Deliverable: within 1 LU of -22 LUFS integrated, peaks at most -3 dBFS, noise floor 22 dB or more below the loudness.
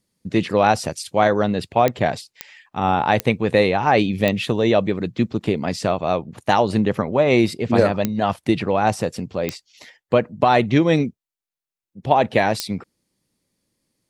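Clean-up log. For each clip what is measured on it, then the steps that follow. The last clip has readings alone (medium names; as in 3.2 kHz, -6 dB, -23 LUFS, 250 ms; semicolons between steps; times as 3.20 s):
clicks found 7; loudness -20.0 LUFS; peak level -1.5 dBFS; loudness target -22.0 LUFS
-> de-click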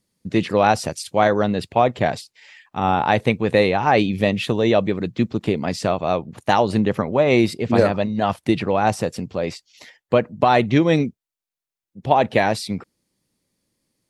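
clicks found 0; loudness -20.0 LUFS; peak level -1.5 dBFS; loudness target -22.0 LUFS
-> trim -2 dB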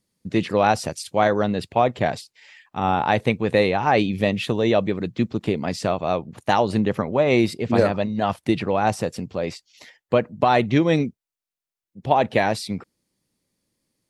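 loudness -22.0 LUFS; peak level -3.5 dBFS; noise floor -90 dBFS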